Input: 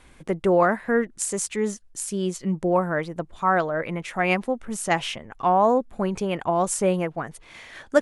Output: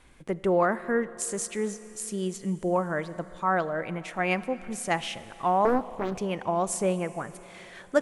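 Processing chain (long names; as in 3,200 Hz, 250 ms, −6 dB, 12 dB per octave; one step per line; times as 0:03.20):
four-comb reverb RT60 3.7 s, combs from 28 ms, DRR 15 dB
0:05.65–0:06.21: highs frequency-modulated by the lows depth 0.69 ms
level −4.5 dB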